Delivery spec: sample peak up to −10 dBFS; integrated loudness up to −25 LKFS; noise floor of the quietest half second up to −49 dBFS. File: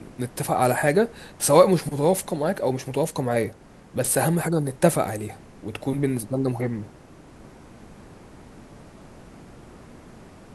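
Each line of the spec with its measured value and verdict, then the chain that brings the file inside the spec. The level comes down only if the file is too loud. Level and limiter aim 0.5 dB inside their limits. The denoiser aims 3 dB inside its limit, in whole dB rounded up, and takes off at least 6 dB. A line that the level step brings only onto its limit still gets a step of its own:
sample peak −2.5 dBFS: out of spec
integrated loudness −23.5 LKFS: out of spec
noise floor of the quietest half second −47 dBFS: out of spec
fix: broadband denoise 6 dB, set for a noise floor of −47 dBFS
level −2 dB
brickwall limiter −10.5 dBFS

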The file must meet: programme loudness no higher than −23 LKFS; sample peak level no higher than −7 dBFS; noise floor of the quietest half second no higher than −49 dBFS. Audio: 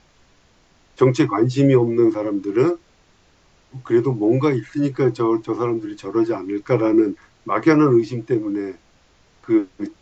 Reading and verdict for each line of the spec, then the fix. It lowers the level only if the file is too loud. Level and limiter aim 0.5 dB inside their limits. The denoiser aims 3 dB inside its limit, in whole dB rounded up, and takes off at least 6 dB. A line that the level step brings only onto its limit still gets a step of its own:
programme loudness −19.5 LKFS: out of spec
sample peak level −2.5 dBFS: out of spec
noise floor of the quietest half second −56 dBFS: in spec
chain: level −4 dB
brickwall limiter −7.5 dBFS

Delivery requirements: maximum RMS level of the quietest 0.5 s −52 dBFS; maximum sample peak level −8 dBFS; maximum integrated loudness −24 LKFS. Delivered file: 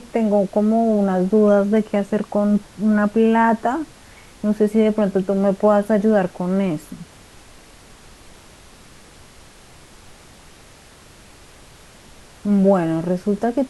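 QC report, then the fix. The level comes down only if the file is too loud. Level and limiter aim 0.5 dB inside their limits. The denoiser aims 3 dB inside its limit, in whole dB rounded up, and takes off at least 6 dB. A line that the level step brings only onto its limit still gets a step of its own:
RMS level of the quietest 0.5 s −46 dBFS: out of spec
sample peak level −4.5 dBFS: out of spec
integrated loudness −18.5 LKFS: out of spec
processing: broadband denoise 6 dB, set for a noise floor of −46 dBFS
level −6 dB

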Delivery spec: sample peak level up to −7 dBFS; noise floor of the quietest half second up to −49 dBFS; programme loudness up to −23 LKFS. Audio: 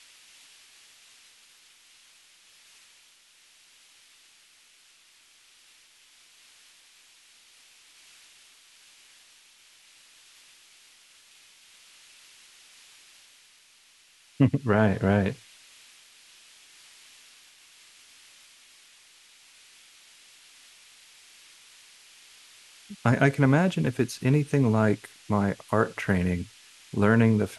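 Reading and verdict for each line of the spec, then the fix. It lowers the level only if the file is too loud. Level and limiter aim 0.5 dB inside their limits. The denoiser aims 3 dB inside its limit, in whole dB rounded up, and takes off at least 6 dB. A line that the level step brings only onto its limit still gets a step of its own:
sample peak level −6.0 dBFS: out of spec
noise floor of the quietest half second −59 dBFS: in spec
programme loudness −24.5 LKFS: in spec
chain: brickwall limiter −7.5 dBFS

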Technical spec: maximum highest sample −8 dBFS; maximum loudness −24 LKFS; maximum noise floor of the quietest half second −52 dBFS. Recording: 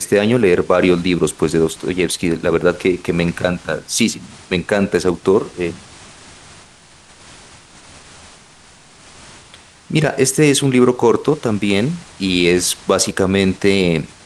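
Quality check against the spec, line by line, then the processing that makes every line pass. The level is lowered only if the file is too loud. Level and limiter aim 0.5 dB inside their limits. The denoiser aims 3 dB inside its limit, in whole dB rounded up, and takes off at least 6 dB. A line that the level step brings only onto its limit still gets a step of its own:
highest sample −1.5 dBFS: out of spec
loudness −16.5 LKFS: out of spec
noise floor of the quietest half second −45 dBFS: out of spec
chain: level −8 dB

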